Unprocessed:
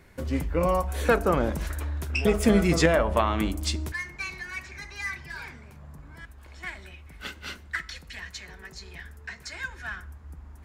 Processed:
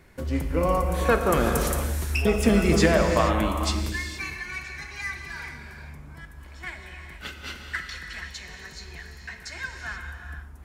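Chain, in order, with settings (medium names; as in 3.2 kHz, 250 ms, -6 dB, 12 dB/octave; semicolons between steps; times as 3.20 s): 1.32–1.78 s: peaking EQ 11 kHz +15 dB 2.5 oct; gated-style reverb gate 500 ms flat, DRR 3.5 dB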